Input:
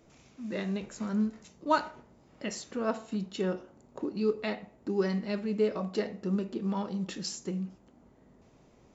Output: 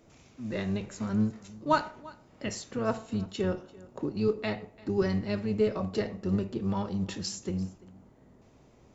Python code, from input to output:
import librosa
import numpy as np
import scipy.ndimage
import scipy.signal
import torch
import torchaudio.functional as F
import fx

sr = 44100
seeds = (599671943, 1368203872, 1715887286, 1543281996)

y = fx.octave_divider(x, sr, octaves=1, level_db=-6.0)
y = y + 10.0 ** (-21.5 / 20.0) * np.pad(y, (int(342 * sr / 1000.0), 0))[:len(y)]
y = y * 10.0 ** (1.0 / 20.0)